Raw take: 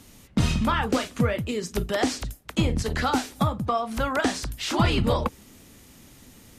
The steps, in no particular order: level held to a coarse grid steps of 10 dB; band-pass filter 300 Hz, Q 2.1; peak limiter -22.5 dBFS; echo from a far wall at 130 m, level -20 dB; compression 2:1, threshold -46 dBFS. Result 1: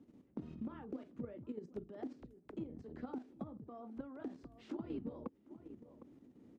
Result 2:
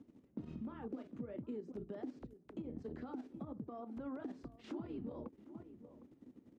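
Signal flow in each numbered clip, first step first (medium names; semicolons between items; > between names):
band-pass filter > peak limiter > echo from a far wall > compression > level held to a coarse grid; echo from a far wall > level held to a coarse grid > peak limiter > band-pass filter > compression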